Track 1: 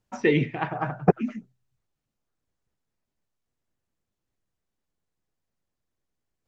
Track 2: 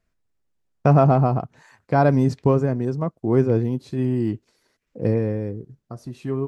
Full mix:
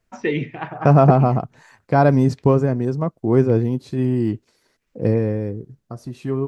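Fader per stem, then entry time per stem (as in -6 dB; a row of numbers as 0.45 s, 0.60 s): -1.0 dB, +2.5 dB; 0.00 s, 0.00 s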